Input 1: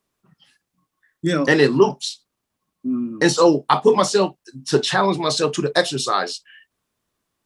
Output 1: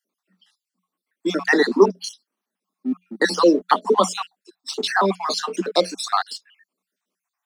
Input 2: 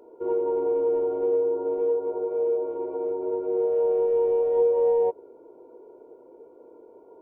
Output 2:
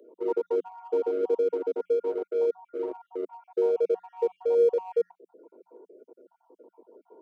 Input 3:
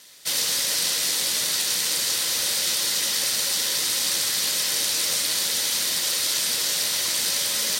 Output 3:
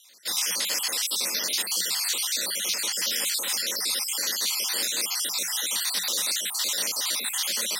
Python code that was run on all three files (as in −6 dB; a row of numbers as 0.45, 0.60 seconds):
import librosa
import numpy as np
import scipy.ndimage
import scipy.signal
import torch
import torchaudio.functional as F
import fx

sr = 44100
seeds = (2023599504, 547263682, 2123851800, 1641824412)

p1 = fx.spec_dropout(x, sr, seeds[0], share_pct=50)
p2 = scipy.signal.sosfilt(scipy.signal.cheby1(10, 1.0, 180.0, 'highpass', fs=sr, output='sos'), p1)
p3 = np.sign(p2) * np.maximum(np.abs(p2) - 10.0 ** (-38.5 / 20.0), 0.0)
p4 = p2 + (p3 * 10.0 ** (-7.0 / 20.0))
y = p4 * 10.0 ** (-2.0 / 20.0)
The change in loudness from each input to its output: −1.5, −3.5, −3.5 LU